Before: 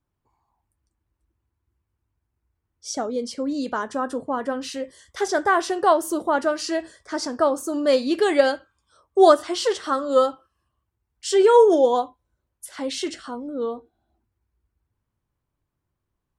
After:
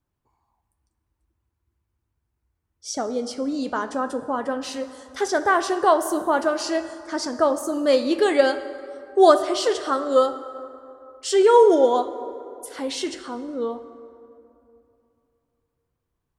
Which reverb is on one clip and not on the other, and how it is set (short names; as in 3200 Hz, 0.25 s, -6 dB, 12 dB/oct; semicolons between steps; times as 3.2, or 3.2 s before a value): plate-style reverb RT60 2.8 s, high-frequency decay 0.5×, DRR 11 dB